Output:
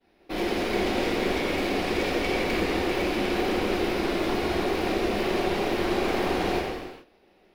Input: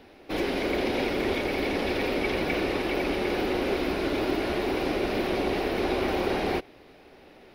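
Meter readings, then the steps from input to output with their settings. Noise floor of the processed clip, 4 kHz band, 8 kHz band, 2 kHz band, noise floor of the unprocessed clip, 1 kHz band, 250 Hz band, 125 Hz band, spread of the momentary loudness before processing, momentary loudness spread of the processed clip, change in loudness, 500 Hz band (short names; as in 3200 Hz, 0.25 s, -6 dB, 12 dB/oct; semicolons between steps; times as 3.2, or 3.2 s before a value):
-61 dBFS, +2.0 dB, +5.0 dB, +1.0 dB, -53 dBFS, +2.5 dB, +1.0 dB, +1.5 dB, 1 LU, 2 LU, +1.0 dB, +0.5 dB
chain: one-sided fold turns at -24.5 dBFS; expander -43 dBFS; non-linear reverb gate 0.46 s falling, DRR -2.5 dB; gain -2.5 dB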